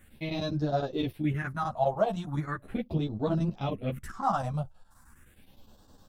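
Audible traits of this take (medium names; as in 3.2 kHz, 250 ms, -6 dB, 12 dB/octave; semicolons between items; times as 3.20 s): phasing stages 4, 0.38 Hz, lowest notch 310–2200 Hz; chopped level 9.7 Hz, depth 65%, duty 80%; a shimmering, thickened sound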